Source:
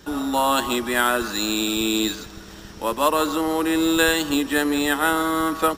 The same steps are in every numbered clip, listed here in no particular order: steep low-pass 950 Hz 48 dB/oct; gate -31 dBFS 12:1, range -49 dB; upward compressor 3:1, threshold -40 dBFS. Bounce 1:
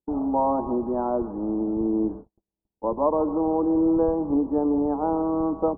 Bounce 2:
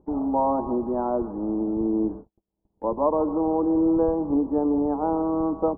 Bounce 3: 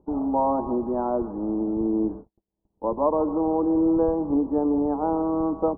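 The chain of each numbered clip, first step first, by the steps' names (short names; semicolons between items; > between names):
upward compressor > gate > steep low-pass; gate > steep low-pass > upward compressor; gate > upward compressor > steep low-pass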